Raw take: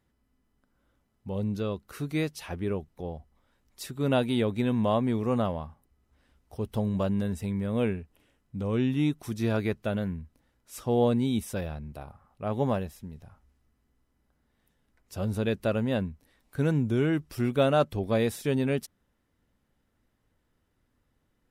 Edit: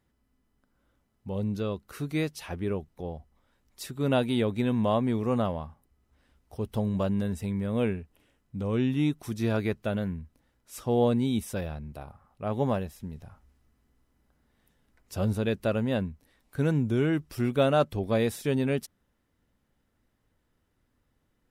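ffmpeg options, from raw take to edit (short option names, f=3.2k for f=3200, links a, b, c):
-filter_complex "[0:a]asplit=3[a][b][c];[a]atrim=end=13.002[d];[b]atrim=start=12.998:end=15.332,asetpts=PTS-STARTPTS,volume=3dB[e];[c]atrim=start=15.328[f];[d][e]acrossfade=d=0.004:c1=hsin:c2=hsin[g];[g][f]acrossfade=d=0.004:c1=hsin:c2=hsin"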